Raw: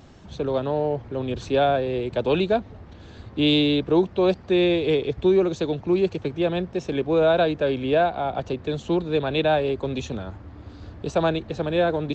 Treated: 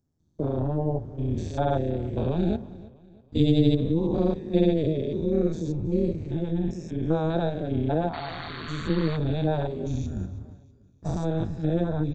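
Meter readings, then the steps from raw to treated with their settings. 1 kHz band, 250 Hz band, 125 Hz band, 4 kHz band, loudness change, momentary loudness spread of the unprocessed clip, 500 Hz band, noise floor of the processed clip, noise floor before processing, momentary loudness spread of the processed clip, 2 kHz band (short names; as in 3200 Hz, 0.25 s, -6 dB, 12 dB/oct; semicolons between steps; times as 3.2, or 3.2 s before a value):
-7.5 dB, -1.5 dB, +4.0 dB, -11.0 dB, -4.0 dB, 10 LU, -7.0 dB, -57 dBFS, -45 dBFS, 10 LU, -11.0 dB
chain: stepped spectrum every 0.2 s; HPF 84 Hz 24 dB/oct; tone controls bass +15 dB, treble +11 dB; painted sound noise, 8.13–9.17, 1000–4500 Hz -28 dBFS; AM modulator 160 Hz, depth 80%; spectral noise reduction 9 dB; notch 4100 Hz, Q 12; gate with hold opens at -34 dBFS; bell 2800 Hz -13.5 dB 0.87 oct; feedback echo 0.323 s, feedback 42%, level -20 dB; gain -1.5 dB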